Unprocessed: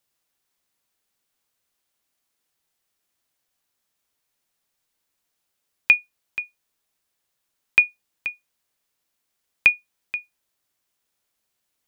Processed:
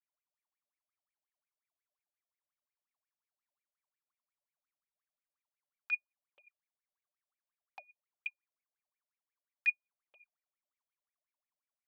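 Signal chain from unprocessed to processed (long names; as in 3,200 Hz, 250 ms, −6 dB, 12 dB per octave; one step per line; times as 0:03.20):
flanger swept by the level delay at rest 6.8 ms, full sweep at −21.5 dBFS
parametric band 1,100 Hz +8 dB 0.34 octaves
LFO wah 5.6 Hz 570–2,400 Hz, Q 21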